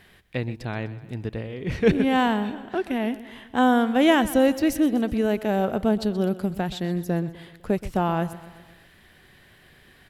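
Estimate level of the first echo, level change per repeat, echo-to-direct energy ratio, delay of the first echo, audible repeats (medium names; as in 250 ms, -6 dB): -16.5 dB, -5.0 dB, -15.0 dB, 126 ms, 4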